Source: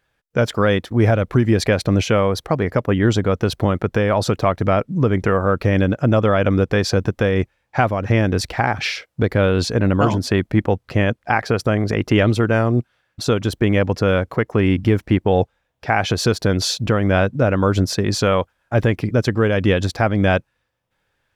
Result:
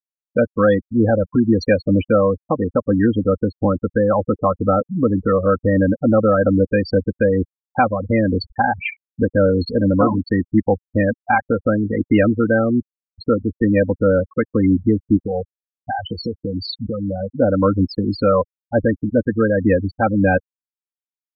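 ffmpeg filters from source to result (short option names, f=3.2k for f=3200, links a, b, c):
-filter_complex "[0:a]asettb=1/sr,asplit=3[a][b][c];[a]atrim=end=15.164[d];[b]atrim=start=15.16:end=17.3,asetpts=PTS-STARTPTS,afade=t=in:d=0.004:c=qsin,afade=t=out:st=2.136:d=0.004:c=qsin,acompressor=threshold=-17dB:ratio=8:attack=3.2:release=140:knee=1:detection=peak[e];[c]atrim=start=17.296[f];[d][e]acrossfade=d=0.004:c1=hsin:c2=qsin[g];[g][f]acrossfade=d=0.004:c1=qsin:c2=hsin,afftfilt=real='re*gte(hypot(re,im),0.251)':imag='im*gte(hypot(re,im),0.251)':win_size=1024:overlap=0.75,aecho=1:1:3.8:0.71"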